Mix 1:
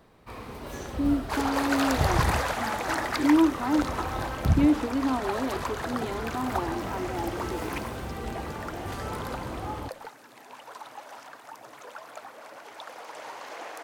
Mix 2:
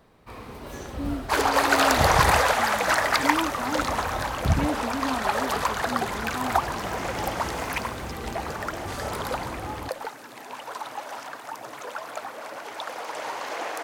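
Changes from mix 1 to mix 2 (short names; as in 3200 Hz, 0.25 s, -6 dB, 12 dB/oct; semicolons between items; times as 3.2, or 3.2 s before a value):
speech: remove resonant high-pass 330 Hz, resonance Q 3.5; second sound +8.0 dB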